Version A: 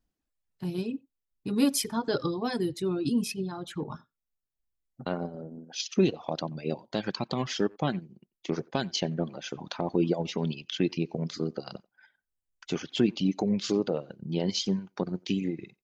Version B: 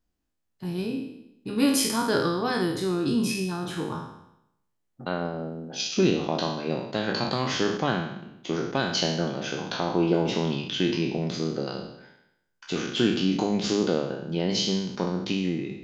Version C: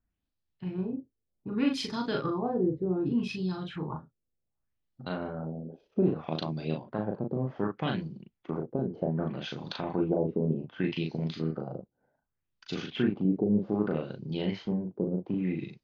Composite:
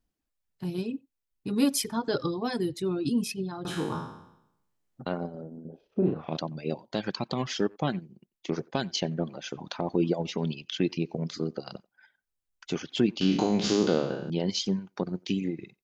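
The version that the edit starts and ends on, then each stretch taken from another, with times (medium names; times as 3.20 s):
A
3.65–5.02 s: from B
5.65–6.37 s: from C
13.21–14.30 s: from B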